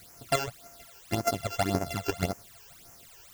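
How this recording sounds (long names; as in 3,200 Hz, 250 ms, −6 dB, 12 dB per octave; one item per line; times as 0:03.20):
a buzz of ramps at a fixed pitch in blocks of 64 samples
chopped level 6.3 Hz, depth 60%, duty 25%
a quantiser's noise floor 10 bits, dither triangular
phaser sweep stages 12, 1.8 Hz, lowest notch 200–3,700 Hz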